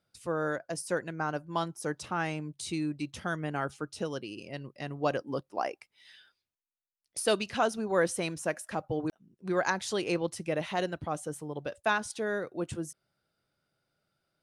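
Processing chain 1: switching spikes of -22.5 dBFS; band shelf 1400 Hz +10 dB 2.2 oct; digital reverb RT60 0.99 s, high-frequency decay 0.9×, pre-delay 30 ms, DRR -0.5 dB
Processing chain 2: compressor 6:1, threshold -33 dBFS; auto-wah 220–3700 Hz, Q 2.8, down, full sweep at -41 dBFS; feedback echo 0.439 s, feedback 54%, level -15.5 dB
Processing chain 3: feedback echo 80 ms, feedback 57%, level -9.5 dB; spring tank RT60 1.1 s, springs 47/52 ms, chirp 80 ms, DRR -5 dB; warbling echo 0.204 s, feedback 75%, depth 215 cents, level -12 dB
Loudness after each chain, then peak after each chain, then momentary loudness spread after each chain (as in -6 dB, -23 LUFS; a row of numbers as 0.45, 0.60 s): -22.5, -48.5, -26.5 LUFS; -4.5, -31.0, -8.0 dBFS; 8, 10, 15 LU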